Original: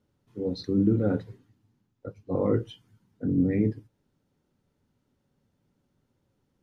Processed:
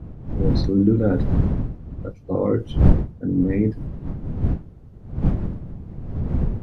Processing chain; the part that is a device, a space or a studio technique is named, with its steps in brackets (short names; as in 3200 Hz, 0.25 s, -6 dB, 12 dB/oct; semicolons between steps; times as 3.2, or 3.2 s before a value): smartphone video outdoors (wind noise 130 Hz -27 dBFS; AGC gain up to 5 dB; gain +1 dB; AAC 96 kbps 32000 Hz)